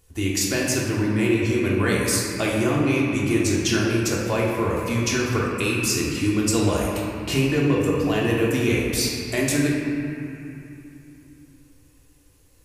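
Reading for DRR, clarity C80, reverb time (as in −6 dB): −4.5 dB, 1.0 dB, 2.9 s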